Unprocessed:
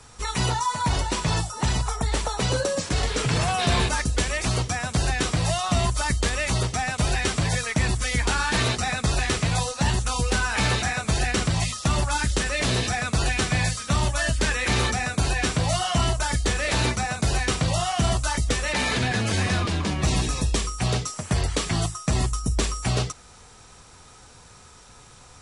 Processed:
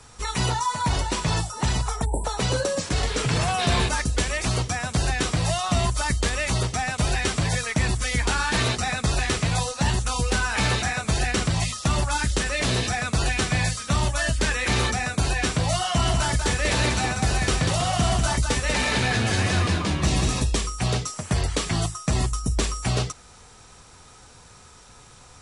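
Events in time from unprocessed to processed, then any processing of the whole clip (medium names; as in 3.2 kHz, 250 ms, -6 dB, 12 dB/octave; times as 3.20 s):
2.05–2.25 s: spectral selection erased 1–7.6 kHz
15.86–20.44 s: delay 192 ms -4.5 dB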